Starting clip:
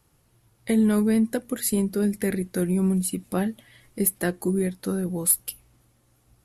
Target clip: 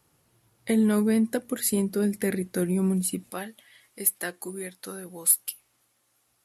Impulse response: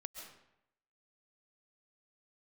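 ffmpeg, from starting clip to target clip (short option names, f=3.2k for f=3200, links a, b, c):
-af "asetnsamples=n=441:p=0,asendcmd='3.3 highpass f 1200',highpass=f=160:p=1"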